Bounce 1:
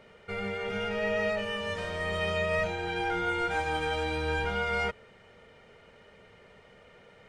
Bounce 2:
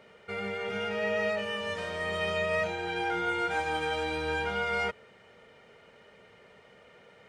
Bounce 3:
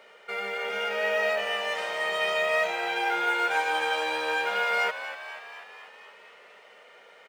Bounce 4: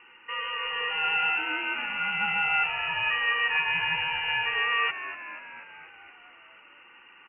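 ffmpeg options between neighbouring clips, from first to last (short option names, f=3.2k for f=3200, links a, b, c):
-af "highpass=f=150:p=1"
-filter_complex "[0:a]highpass=550,asplit=9[a][b][c][d][e][f][g][h][i];[b]adelay=243,afreqshift=74,volume=-12dB[j];[c]adelay=486,afreqshift=148,volume=-15.9dB[k];[d]adelay=729,afreqshift=222,volume=-19.8dB[l];[e]adelay=972,afreqshift=296,volume=-23.6dB[m];[f]adelay=1215,afreqshift=370,volume=-27.5dB[n];[g]adelay=1458,afreqshift=444,volume=-31.4dB[o];[h]adelay=1701,afreqshift=518,volume=-35.3dB[p];[i]adelay=1944,afreqshift=592,volume=-39.1dB[q];[a][j][k][l][m][n][o][p][q]amix=inputs=9:normalize=0,acrusher=bits=8:mode=log:mix=0:aa=0.000001,volume=5dB"
-af "lowpass=f=2.8k:t=q:w=0.5098,lowpass=f=2.8k:t=q:w=0.6013,lowpass=f=2.8k:t=q:w=0.9,lowpass=f=2.8k:t=q:w=2.563,afreqshift=-3300"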